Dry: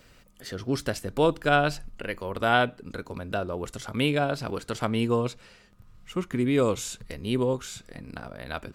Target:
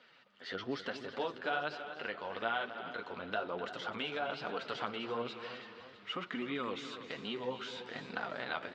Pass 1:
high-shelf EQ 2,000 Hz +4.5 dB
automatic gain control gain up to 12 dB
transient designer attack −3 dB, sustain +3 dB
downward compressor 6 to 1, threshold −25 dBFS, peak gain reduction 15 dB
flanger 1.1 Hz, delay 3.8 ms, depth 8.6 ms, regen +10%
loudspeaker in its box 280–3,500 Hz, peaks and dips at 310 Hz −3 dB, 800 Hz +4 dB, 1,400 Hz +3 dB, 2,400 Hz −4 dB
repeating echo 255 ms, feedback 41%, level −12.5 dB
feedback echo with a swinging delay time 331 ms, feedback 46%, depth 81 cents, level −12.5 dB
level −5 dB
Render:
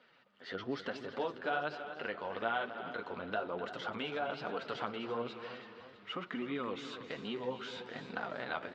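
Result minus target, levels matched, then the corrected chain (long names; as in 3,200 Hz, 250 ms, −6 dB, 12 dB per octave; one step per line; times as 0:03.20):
4,000 Hz band −3.0 dB
high-shelf EQ 2,000 Hz +12 dB
automatic gain control gain up to 12 dB
transient designer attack −3 dB, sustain +3 dB
downward compressor 6 to 1, threshold −25 dBFS, peak gain reduction 15.5 dB
flanger 1.1 Hz, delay 3.8 ms, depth 8.6 ms, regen +10%
loudspeaker in its box 280–3,500 Hz, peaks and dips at 310 Hz −3 dB, 800 Hz +4 dB, 1,400 Hz +3 dB, 2,400 Hz −4 dB
repeating echo 255 ms, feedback 41%, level −12.5 dB
feedback echo with a swinging delay time 331 ms, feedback 46%, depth 81 cents, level −12.5 dB
level −5 dB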